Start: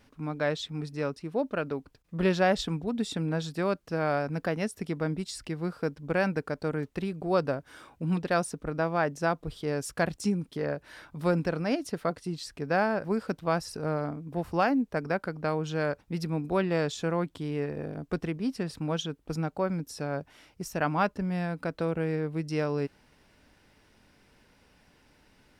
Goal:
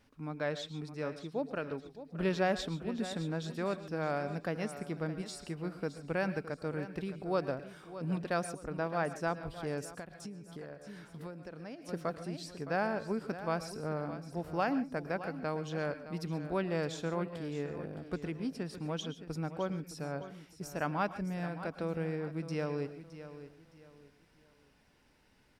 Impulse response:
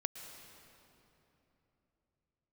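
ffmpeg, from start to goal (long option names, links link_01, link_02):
-filter_complex "[0:a]aecho=1:1:615|1230|1845:0.224|0.0716|0.0229[link_01];[1:a]atrim=start_sample=2205,atrim=end_sample=6615[link_02];[link_01][link_02]afir=irnorm=-1:irlink=0,asettb=1/sr,asplit=3[link_03][link_04][link_05];[link_03]atrim=end=9.834[link_06];[link_04]atrim=start=9.83:end=11.89,asetpts=PTS-STARTPTS,afade=type=in:duration=0.004:curve=qsin,afade=type=out:start_time=2.056:duration=0.004:curve=qsin,acompressor=threshold=-37dB:ratio=8[link_07];[link_05]atrim=start=11.886[link_08];[link_06][link_07]acrossfade=duration=0.004:curve1=hsin:curve2=qsin[link_09];[link_09][link_08]acrossfade=duration=0.004:curve1=qsin:curve2=hsin,volume=-5.5dB"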